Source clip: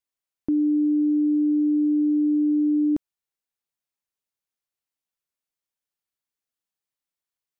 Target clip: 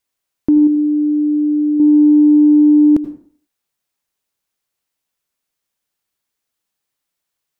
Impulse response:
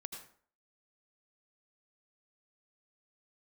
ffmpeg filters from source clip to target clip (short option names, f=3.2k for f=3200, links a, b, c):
-filter_complex "[0:a]asettb=1/sr,asplit=3[a][b][c];[a]atrim=end=0.674[d];[b]atrim=start=0.67:end=1.8,asetpts=PTS-STARTPTS,afade=t=in:d=0.004:c=qsin,afade=t=out:st=1.126:d=0.004:c=qsin,equalizer=f=300:t=o:w=0.77:g=-6.5[e];[c]atrim=start=1.796[f];[d][e]acrossfade=d=0.004:c1=hsin:c2=qsin[g];[g][f]acrossfade=d=0.004:c1=qsin:c2=hsin,acontrast=62,asplit=2[h][i];[1:a]atrim=start_sample=2205[j];[i][j]afir=irnorm=-1:irlink=0,volume=1.5dB[k];[h][k]amix=inputs=2:normalize=0"